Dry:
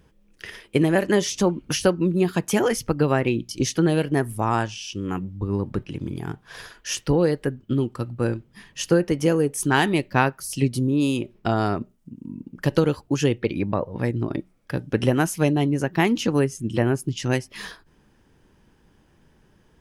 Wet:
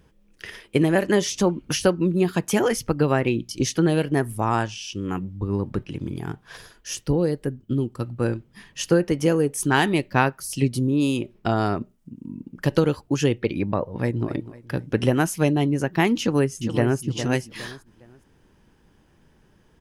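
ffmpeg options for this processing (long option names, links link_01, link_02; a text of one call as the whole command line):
ffmpeg -i in.wav -filter_complex "[0:a]asettb=1/sr,asplit=3[link_01][link_02][link_03];[link_01]atrim=end=6.574[link_04];[link_02]atrim=start=6.57:end=8,asetpts=PTS-STARTPTS,afade=type=in:duration=0.004:curve=qsin,afade=type=out:start_time=1.426:duration=0.004:curve=qsin,equalizer=frequency=1700:width=0.37:gain=-7.5[link_05];[link_03]atrim=start=7.996[link_06];[link_04][link_05]acrossfade=duration=0.004:curve1=hsin:curve2=qsin[link_07];[link_07][link_06]acrossfade=duration=0.004:curve1=qsin:curve2=hsin,asplit=2[link_08][link_09];[link_09]afade=type=in:start_time=13.79:duration=0.01,afade=type=out:start_time=14.28:duration=0.01,aecho=0:1:250|500|750|1000:0.177828|0.0800226|0.0360102|0.0162046[link_10];[link_08][link_10]amix=inputs=2:normalize=0,asplit=2[link_11][link_12];[link_12]afade=type=in:start_time=16.2:duration=0.01,afade=type=out:start_time=17:duration=0.01,aecho=0:1:410|820|1230:0.334965|0.10049|0.0301469[link_13];[link_11][link_13]amix=inputs=2:normalize=0" out.wav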